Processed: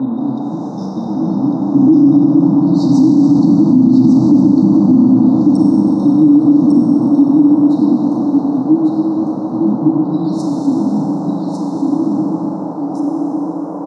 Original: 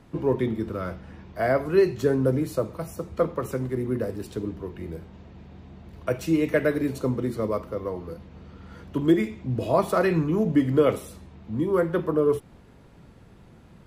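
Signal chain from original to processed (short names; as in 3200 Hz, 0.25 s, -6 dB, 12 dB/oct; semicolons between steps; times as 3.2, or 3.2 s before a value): slices in reverse order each 0.203 s, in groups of 3; Doppler pass-by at 3.94, 16 m/s, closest 12 m; FFT band-reject 340–3600 Hz; treble ducked by the level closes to 540 Hz, closed at -30 dBFS; HPF 190 Hz 24 dB/oct; LFO low-pass sine 0.4 Hz 410–6400 Hz; band noise 280–940 Hz -60 dBFS; band shelf 2800 Hz -10 dB; on a send: echo 1.15 s -4 dB; on the sum: Schroeder reverb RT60 3.8 s, combs from 31 ms, DRR -1 dB; maximiser +27.5 dB; gain -1 dB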